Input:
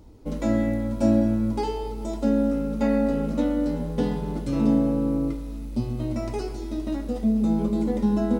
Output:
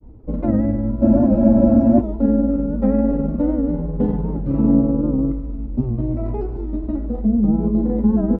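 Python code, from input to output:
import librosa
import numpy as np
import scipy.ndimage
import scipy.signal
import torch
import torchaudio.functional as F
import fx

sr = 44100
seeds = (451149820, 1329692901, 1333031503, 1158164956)

y = scipy.signal.sosfilt(scipy.signal.butter(2, 1200.0, 'lowpass', fs=sr, output='sos'), x)
y = fx.low_shelf(y, sr, hz=390.0, db=8.0)
y = fx.granulator(y, sr, seeds[0], grain_ms=100.0, per_s=20.0, spray_ms=25.0, spread_st=0)
y = fx.spec_freeze(y, sr, seeds[1], at_s=1.05, hold_s=0.96)
y = fx.record_warp(y, sr, rpm=78.0, depth_cents=100.0)
y = y * 10.0 ** (1.0 / 20.0)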